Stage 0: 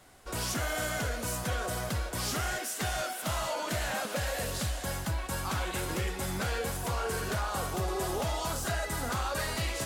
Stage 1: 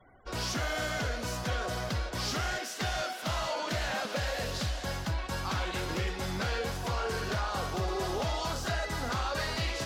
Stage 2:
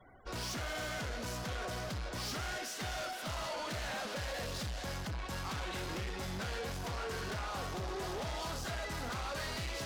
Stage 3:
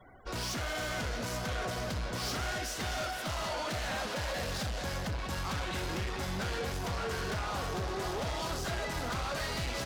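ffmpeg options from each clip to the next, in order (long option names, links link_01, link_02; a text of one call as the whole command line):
ffmpeg -i in.wav -af "afftfilt=real='re*gte(hypot(re,im),0.00178)':imag='im*gte(hypot(re,im),0.00178)':win_size=1024:overlap=0.75,highshelf=frequency=6900:width_type=q:width=1.5:gain=-9" out.wav
ffmpeg -i in.wav -af "asoftclip=type=tanh:threshold=-36.5dB" out.wav
ffmpeg -i in.wav -filter_complex "[0:a]asplit=2[link_01][link_02];[link_02]adelay=641.4,volume=-7dB,highshelf=frequency=4000:gain=-14.4[link_03];[link_01][link_03]amix=inputs=2:normalize=0,volume=3.5dB" out.wav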